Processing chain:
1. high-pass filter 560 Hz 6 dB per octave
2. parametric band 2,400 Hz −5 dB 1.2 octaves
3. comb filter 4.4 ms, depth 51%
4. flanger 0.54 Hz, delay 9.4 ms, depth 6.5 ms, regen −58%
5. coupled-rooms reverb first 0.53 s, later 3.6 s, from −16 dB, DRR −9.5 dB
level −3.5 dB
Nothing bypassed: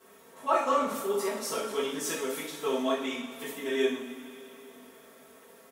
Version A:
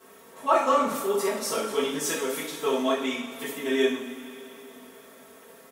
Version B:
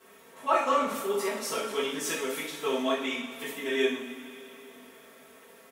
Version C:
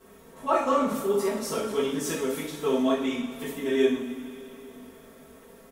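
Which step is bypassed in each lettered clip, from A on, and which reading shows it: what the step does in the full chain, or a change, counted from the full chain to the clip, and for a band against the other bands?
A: 4, change in integrated loudness +4.0 LU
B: 2, 2 kHz band +3.5 dB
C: 1, 125 Hz band +10.0 dB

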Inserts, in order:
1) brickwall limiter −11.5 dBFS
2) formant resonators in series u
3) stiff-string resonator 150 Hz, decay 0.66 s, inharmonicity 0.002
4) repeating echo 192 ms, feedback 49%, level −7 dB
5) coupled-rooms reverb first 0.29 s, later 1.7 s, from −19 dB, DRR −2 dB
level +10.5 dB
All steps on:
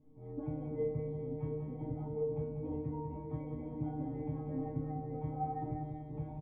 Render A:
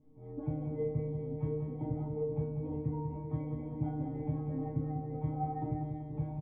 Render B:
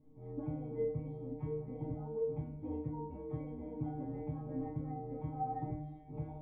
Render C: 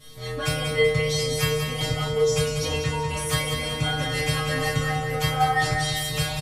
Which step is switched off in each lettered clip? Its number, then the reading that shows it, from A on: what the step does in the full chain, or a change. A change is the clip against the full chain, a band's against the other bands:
1, change in momentary loudness spread −2 LU
4, echo-to-direct ratio 3.5 dB to 2.0 dB
2, 250 Hz band −7.0 dB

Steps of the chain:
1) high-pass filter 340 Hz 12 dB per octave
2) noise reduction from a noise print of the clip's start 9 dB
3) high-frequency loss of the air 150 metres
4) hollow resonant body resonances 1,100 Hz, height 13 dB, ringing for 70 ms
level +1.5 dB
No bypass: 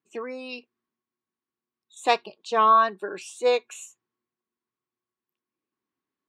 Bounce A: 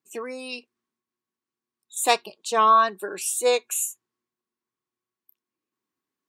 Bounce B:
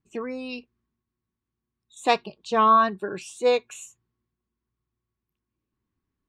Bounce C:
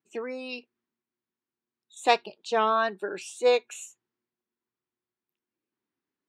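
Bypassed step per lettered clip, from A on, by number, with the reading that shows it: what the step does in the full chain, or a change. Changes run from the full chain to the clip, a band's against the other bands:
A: 3, 8 kHz band +14.5 dB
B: 1, 250 Hz band +7.5 dB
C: 4, 1 kHz band −5.5 dB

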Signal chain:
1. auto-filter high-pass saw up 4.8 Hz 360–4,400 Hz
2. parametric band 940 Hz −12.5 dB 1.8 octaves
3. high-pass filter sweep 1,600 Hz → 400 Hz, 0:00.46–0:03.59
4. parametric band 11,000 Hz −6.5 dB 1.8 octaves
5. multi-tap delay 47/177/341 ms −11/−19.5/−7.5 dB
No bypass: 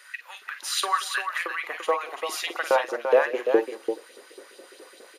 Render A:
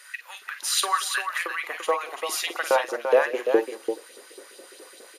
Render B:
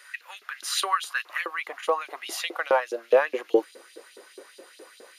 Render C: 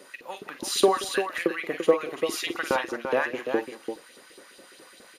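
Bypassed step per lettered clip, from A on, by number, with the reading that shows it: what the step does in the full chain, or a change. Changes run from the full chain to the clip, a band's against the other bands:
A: 4, 8 kHz band +5.0 dB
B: 5, echo-to-direct ratio −5.5 dB to none audible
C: 3, 250 Hz band +5.5 dB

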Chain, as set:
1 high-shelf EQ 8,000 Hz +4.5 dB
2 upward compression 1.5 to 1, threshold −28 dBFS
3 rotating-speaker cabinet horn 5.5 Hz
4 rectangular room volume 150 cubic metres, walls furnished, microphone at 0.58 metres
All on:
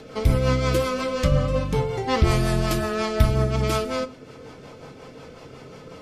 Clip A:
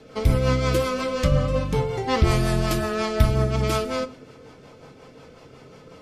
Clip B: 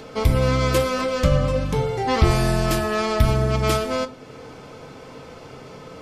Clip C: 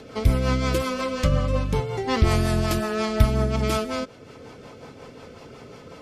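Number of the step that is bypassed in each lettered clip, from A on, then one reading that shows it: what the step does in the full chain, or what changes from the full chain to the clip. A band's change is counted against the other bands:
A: 2, change in momentary loudness spread −17 LU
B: 3, change in integrated loudness +2.0 LU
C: 4, echo-to-direct ratio −8.5 dB to none audible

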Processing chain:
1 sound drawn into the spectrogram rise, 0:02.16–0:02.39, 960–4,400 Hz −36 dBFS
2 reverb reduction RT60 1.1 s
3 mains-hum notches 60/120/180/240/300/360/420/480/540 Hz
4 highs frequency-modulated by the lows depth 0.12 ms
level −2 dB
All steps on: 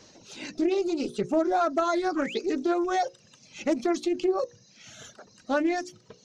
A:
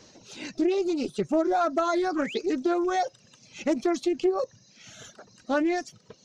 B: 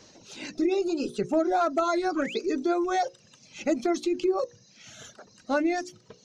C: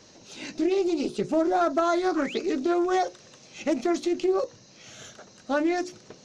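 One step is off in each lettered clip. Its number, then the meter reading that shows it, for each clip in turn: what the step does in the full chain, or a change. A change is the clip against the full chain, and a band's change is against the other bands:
3, change in momentary loudness spread +2 LU
4, change in momentary loudness spread +2 LU
2, change in momentary loudness spread +3 LU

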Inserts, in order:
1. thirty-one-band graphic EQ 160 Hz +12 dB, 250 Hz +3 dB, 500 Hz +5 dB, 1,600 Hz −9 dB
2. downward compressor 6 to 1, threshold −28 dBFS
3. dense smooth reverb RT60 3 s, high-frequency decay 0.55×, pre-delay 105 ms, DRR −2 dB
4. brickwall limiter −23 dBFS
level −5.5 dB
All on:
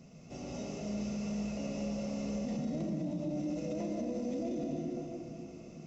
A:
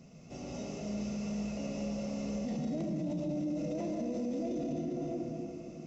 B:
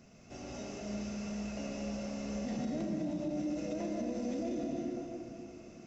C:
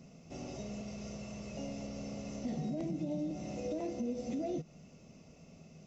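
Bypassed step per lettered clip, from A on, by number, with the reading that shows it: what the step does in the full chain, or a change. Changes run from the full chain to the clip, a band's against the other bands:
2, average gain reduction 2.0 dB
1, change in momentary loudness spread +2 LU
3, change in momentary loudness spread +11 LU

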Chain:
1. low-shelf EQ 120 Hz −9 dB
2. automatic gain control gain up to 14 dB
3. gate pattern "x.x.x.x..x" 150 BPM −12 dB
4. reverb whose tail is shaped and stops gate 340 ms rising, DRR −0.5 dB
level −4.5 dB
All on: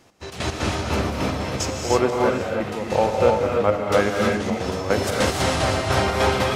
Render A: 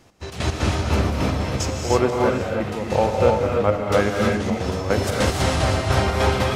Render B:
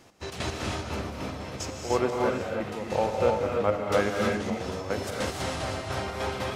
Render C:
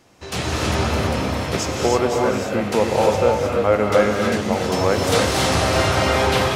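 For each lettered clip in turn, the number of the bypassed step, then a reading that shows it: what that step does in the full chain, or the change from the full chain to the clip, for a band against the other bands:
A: 1, 125 Hz band +5.0 dB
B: 2, change in integrated loudness −7.5 LU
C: 3, change in crest factor −3.0 dB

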